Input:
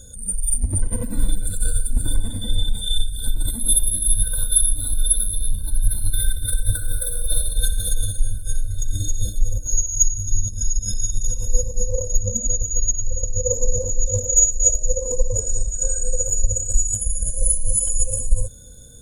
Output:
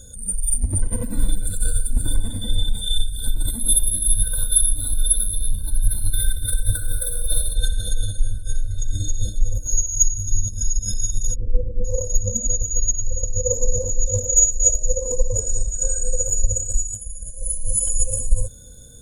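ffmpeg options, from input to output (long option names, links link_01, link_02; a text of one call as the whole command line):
ffmpeg -i in.wav -filter_complex "[0:a]asettb=1/sr,asplit=3[link_01][link_02][link_03];[link_01]atrim=end=7.554[link_04];[link_02]atrim=start=7.55:end=9.55,asetpts=PTS-STARTPTS,afade=type=in:duration=0.004:curve=qsin,afade=type=out:start_time=1.996:duration=0.004:curve=qsin,lowpass=7600[link_05];[link_03]atrim=start=9.546[link_06];[link_04][link_05]acrossfade=duration=0.004:curve1=hsin:curve2=qsin[link_07];[link_07][link_06]acrossfade=duration=0.004:curve1=qsin:curve2=hsin,asplit=3[link_08][link_09][link_10];[link_08]afade=type=out:start_time=11.34:duration=0.02[link_11];[link_09]lowpass=frequency=360:width_type=q:width=2.2,afade=type=in:start_time=11.34:duration=0.02,afade=type=out:start_time=11.84:duration=0.02[link_12];[link_10]afade=type=in:start_time=11.84:duration=0.02[link_13];[link_11][link_12][link_13]amix=inputs=3:normalize=0,asplit=3[link_14][link_15][link_16];[link_14]atrim=end=17.02,asetpts=PTS-STARTPTS,afade=type=out:start_time=16.58:duration=0.44:silence=0.316228[link_17];[link_15]atrim=start=17.02:end=17.4,asetpts=PTS-STARTPTS,volume=-10dB[link_18];[link_16]atrim=start=17.4,asetpts=PTS-STARTPTS,afade=type=in:duration=0.44:silence=0.316228[link_19];[link_17][link_18][link_19]concat=n=3:v=0:a=1" out.wav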